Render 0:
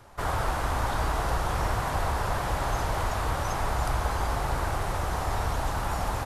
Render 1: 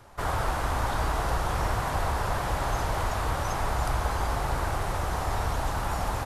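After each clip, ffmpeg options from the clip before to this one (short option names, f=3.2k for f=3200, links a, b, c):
-af anull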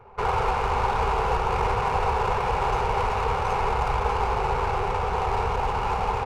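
-af "superequalizer=6b=0.316:7b=3.55:9b=2.51:10b=1.58:12b=2.82,adynamicsmooth=sensitivity=4:basefreq=1.5k"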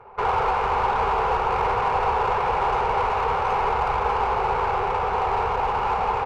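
-filter_complex "[0:a]asplit=2[a][b];[b]highpass=f=720:p=1,volume=12dB,asoftclip=type=tanh:threshold=-10.5dB[c];[a][c]amix=inputs=2:normalize=0,lowpass=f=1.5k:p=1,volume=-6dB"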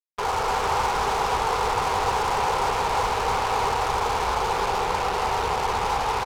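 -af "acrusher=bits=3:mix=0:aa=0.5,adynamicsmooth=sensitivity=7:basefreq=3.9k,aecho=1:1:310:0.668,volume=-3.5dB"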